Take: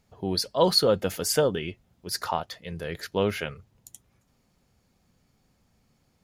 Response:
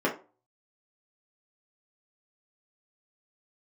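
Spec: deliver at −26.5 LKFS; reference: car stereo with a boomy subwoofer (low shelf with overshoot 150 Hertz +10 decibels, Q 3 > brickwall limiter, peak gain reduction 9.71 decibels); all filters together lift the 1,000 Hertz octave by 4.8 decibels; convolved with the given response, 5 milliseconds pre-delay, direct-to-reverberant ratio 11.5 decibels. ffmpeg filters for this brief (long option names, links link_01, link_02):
-filter_complex "[0:a]equalizer=frequency=1000:width_type=o:gain=6,asplit=2[link_01][link_02];[1:a]atrim=start_sample=2205,adelay=5[link_03];[link_02][link_03]afir=irnorm=-1:irlink=0,volume=-23.5dB[link_04];[link_01][link_04]amix=inputs=2:normalize=0,lowshelf=frequency=150:width_type=q:width=3:gain=10,volume=0.5dB,alimiter=limit=-14.5dB:level=0:latency=1"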